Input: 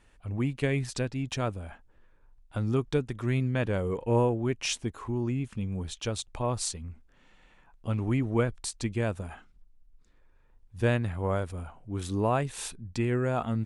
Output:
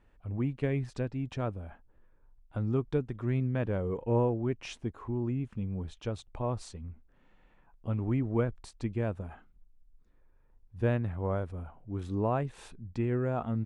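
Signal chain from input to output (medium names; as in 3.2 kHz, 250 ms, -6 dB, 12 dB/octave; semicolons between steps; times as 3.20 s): low-pass 1.1 kHz 6 dB/octave; trim -2 dB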